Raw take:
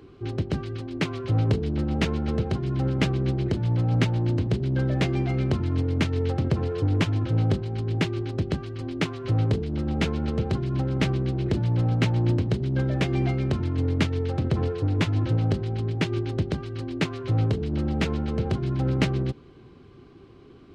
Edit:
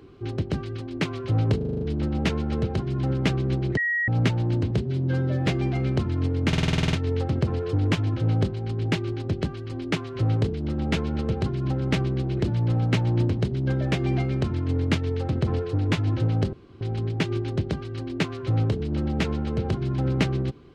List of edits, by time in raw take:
1.57 s: stutter 0.04 s, 7 plays
3.53–3.84 s: bleep 1.9 kHz -21.5 dBFS
4.57–5.01 s: stretch 1.5×
6.02 s: stutter 0.05 s, 10 plays
15.62 s: insert room tone 0.28 s

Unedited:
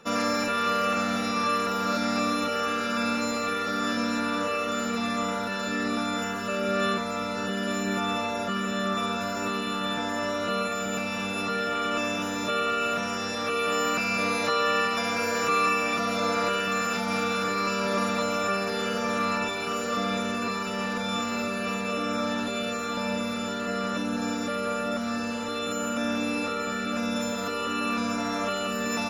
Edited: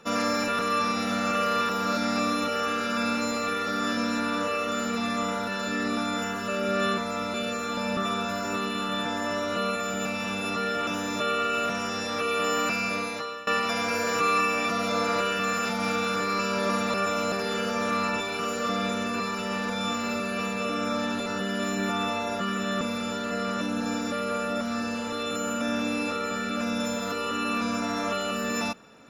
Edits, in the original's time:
0.59–1.69 s: reverse
7.34–8.89 s: swap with 22.54–23.17 s
11.79–12.15 s: delete
14.00–14.75 s: fade out, to -20.5 dB
18.22–18.60 s: reverse

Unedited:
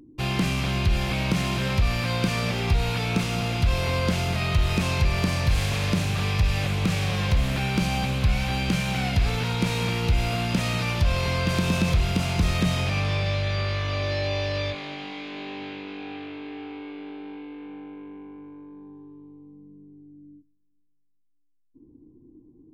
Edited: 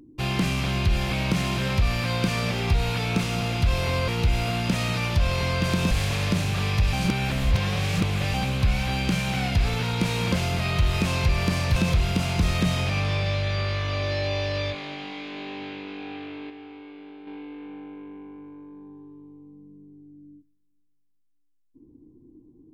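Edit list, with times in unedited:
4.08–5.52 s: swap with 9.93–11.76 s
6.54–7.95 s: reverse
16.50–17.27 s: gain -5.5 dB

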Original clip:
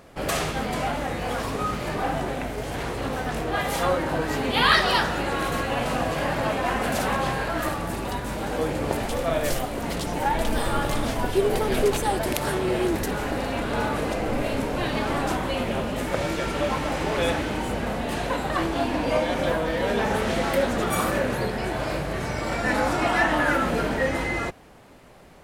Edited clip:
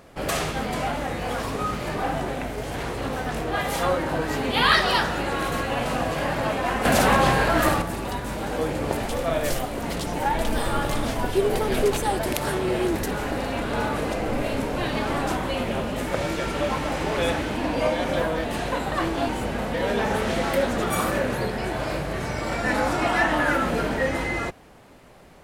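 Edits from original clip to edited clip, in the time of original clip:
6.85–7.82 s: gain +6.5 dB
17.57–18.02 s: swap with 18.87–19.74 s

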